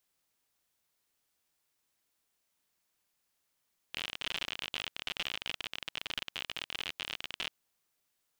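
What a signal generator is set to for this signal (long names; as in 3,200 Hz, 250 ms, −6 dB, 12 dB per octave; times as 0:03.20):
Geiger counter clicks 55 per second −20 dBFS 3.54 s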